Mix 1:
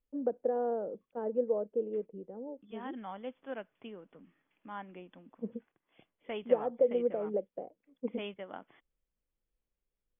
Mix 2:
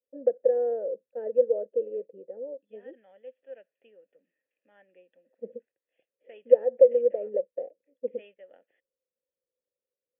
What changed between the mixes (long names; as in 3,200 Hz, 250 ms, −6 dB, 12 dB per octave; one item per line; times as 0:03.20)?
first voice +12.0 dB
master: add formant filter e